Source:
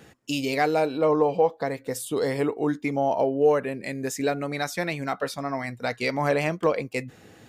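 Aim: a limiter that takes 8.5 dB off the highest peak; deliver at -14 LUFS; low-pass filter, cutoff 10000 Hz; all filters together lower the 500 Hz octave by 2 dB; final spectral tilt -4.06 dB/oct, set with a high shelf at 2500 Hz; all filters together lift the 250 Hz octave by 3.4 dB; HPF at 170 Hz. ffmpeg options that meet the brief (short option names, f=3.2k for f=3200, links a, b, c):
-af "highpass=170,lowpass=10k,equalizer=f=250:t=o:g=6,equalizer=f=500:t=o:g=-4,highshelf=f=2.5k:g=6.5,volume=14dB,alimiter=limit=-3dB:level=0:latency=1"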